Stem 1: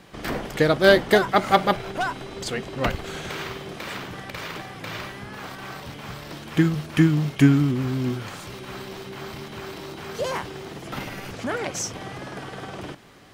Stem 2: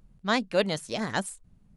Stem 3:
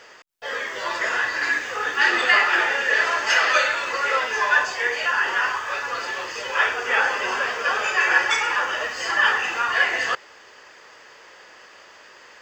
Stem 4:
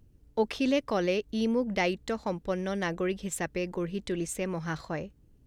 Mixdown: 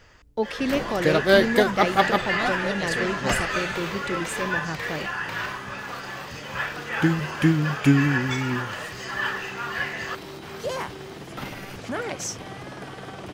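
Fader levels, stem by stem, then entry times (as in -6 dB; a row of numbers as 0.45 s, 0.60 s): -2.0 dB, -5.5 dB, -9.0 dB, +1.5 dB; 0.45 s, 2.10 s, 0.00 s, 0.00 s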